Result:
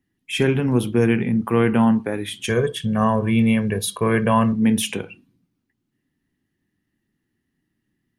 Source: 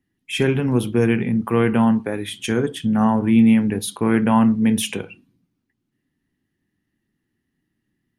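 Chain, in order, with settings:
0:02.49–0:04.53: comb filter 1.8 ms, depth 79%

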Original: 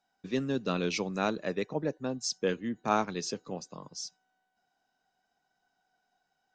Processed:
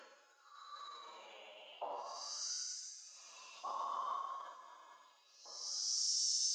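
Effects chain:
high-pass filter 230 Hz 12 dB per octave
downward compressor, threshold −36 dBFS, peak gain reduction 14.5 dB
extreme stretch with random phases 10×, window 0.10 s, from 0:03.38
auto-filter high-pass saw up 0.55 Hz 950–2,700 Hz
phase-vocoder pitch shift with formants kept +2 semitones
delay with a high-pass on its return 372 ms, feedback 56%, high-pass 5,100 Hz, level −11 dB
level +3.5 dB

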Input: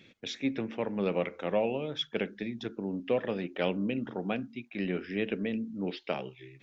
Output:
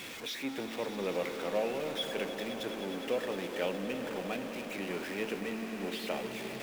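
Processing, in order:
converter with a step at zero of −32 dBFS
bass and treble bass −10 dB, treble −2 dB
echo that builds up and dies away 103 ms, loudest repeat 5, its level −14 dB
level −5 dB

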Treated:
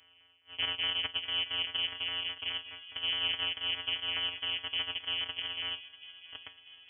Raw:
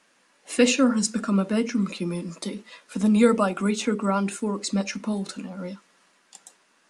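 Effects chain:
samples sorted by size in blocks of 256 samples
reversed playback
downward compressor 4 to 1, threshold −34 dBFS, peak gain reduction 17.5 dB
reversed playback
auto-filter notch saw up 4.8 Hz 360–2,400 Hz
voice inversion scrambler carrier 3,200 Hz
delay with a high-pass on its return 642 ms, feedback 60%, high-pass 1,800 Hz, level −14.5 dB
level +1.5 dB

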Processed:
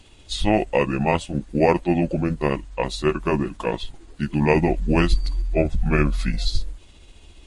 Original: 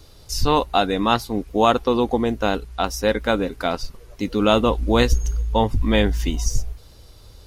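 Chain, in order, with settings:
pitch shift by two crossfaded delay taps −6 semitones

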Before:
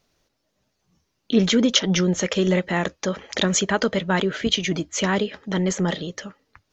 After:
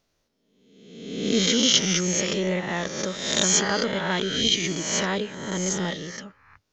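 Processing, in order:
peak hold with a rise ahead of every peak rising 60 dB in 1.07 s
dynamic equaliser 5,700 Hz, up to +6 dB, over −32 dBFS, Q 0.93
level −7 dB

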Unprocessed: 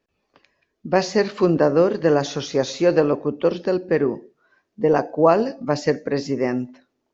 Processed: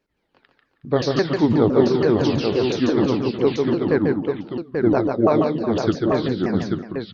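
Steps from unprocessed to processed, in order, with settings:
pitch shifter swept by a sawtooth −8 semitones, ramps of 170 ms
multi-tap delay 143/150/366/837 ms −4.5/−17/−12.5/−5 dB

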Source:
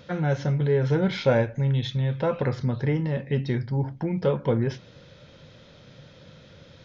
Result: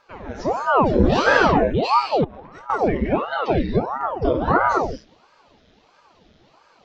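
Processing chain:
reverb whose tail is shaped and stops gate 310 ms flat, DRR −3.5 dB
0:02.24–0:02.70: compressor whose output falls as the input rises −33 dBFS, ratio −1
noise reduction from a noise print of the clip's start 13 dB
ring modulator whose carrier an LFO sweeps 580 Hz, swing 90%, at 1.5 Hz
level +5 dB

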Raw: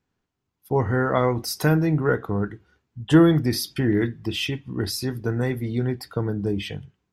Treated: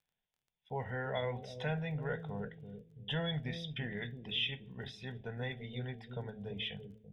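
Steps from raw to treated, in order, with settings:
transistor ladder low-pass 3,700 Hz, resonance 85%
parametric band 88 Hz −11.5 dB 0.75 octaves
in parallel at −2.5 dB: brickwall limiter −28.5 dBFS, peak gain reduction 11 dB
on the sum: phaser with its sweep stopped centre 1,200 Hz, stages 6
hum removal 108 Hz, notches 7
surface crackle 19 per second −58 dBFS
on a send: bucket-brigade delay 336 ms, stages 1,024, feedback 37%, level −7 dB
on the sum: level −2 dB

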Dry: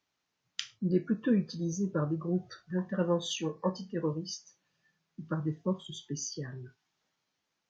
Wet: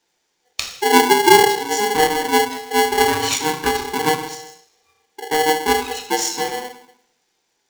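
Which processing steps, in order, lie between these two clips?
0:04.14–0:05.22: downward compressor, threshold −47 dBFS, peak gain reduction 14.5 dB
convolution reverb RT60 0.80 s, pre-delay 3 ms, DRR 0.5 dB
ring modulator with a square carrier 620 Hz
level +6 dB

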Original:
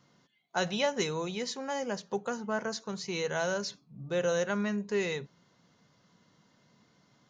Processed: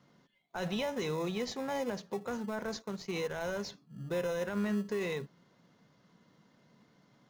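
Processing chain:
0:02.82–0:03.69: mu-law and A-law mismatch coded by A
high-pass filter 120 Hz 12 dB per octave
high-shelf EQ 5,100 Hz −10.5 dB
brickwall limiter −27.5 dBFS, peak gain reduction 9.5 dB
in parallel at −10 dB: decimation without filtering 29×

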